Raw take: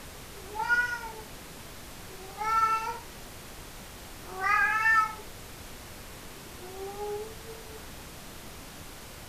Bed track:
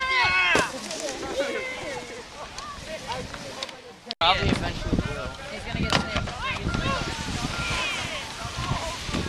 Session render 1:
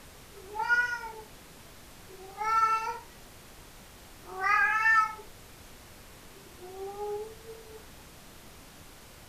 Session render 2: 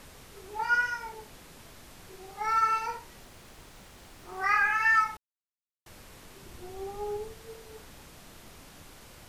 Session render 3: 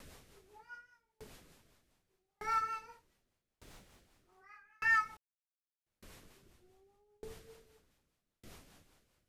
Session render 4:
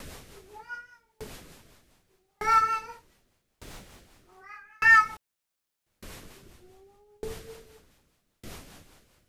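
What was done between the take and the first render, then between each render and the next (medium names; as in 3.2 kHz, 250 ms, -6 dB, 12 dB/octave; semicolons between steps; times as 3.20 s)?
noise print and reduce 6 dB
3.22–4.38 s: self-modulated delay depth 0.087 ms; 5.17–5.86 s: mute; 6.42–7.32 s: bass shelf 140 Hz +8 dB
rotary cabinet horn 5 Hz; sawtooth tremolo in dB decaying 0.83 Hz, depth 40 dB
trim +12 dB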